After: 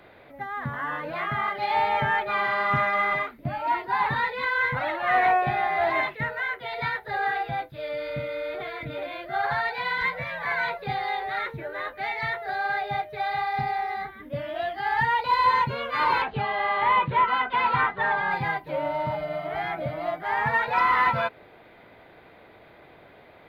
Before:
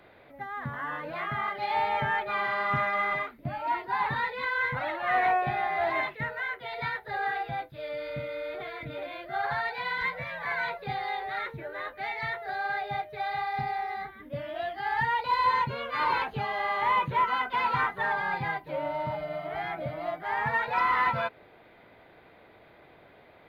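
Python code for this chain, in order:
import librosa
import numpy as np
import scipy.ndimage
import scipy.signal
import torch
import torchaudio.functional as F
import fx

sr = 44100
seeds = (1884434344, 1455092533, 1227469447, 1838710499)

y = fx.lowpass(x, sr, hz=4200.0, slope=24, at=(16.22, 18.31))
y = y * 10.0 ** (4.0 / 20.0)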